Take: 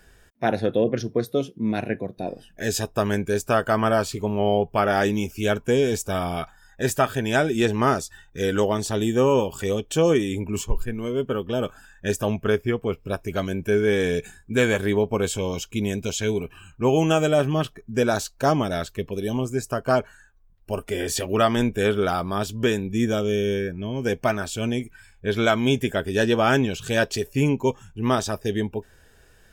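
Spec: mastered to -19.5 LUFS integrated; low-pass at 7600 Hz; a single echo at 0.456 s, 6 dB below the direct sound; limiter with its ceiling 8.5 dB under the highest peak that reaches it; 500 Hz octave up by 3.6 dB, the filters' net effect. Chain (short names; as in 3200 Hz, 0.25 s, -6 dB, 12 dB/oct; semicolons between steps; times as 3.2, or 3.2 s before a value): LPF 7600 Hz; bell 500 Hz +4.5 dB; limiter -12.5 dBFS; echo 0.456 s -6 dB; gain +3.5 dB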